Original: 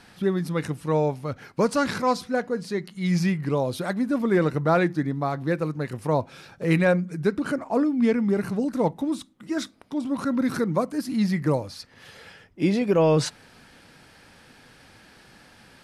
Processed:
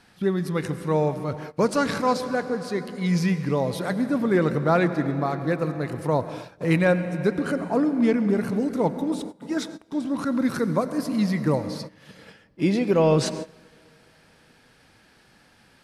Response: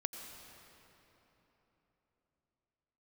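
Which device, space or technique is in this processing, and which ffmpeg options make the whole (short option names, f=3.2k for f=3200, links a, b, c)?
keyed gated reverb: -filter_complex "[0:a]asplit=3[a][b][c];[1:a]atrim=start_sample=2205[d];[b][d]afir=irnorm=-1:irlink=0[e];[c]apad=whole_len=698174[f];[e][f]sidechaingate=range=-20dB:threshold=-44dB:ratio=16:detection=peak,volume=1.5dB[g];[a][g]amix=inputs=2:normalize=0,volume=-6dB"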